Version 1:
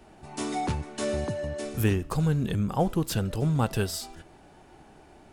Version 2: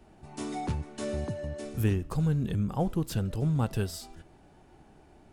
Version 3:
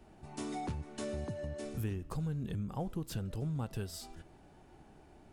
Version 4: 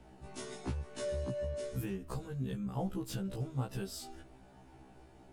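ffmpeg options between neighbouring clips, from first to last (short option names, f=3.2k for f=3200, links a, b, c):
-af "lowshelf=f=320:g=6.5,volume=-7dB"
-af "acompressor=threshold=-35dB:ratio=2.5,volume=-2dB"
-af "afftfilt=real='re*1.73*eq(mod(b,3),0)':imag='im*1.73*eq(mod(b,3),0)':win_size=2048:overlap=0.75,volume=3.5dB"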